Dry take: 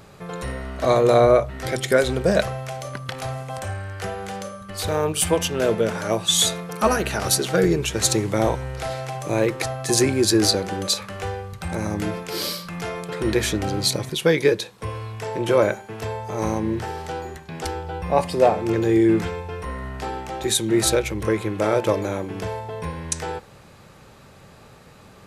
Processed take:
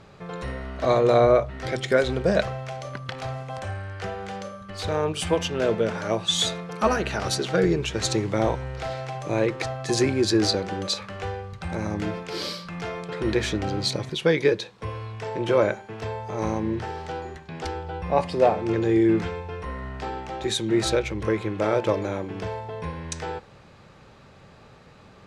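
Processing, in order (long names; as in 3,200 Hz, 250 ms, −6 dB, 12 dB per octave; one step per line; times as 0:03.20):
low-pass filter 5,300 Hz 12 dB per octave
level −2.5 dB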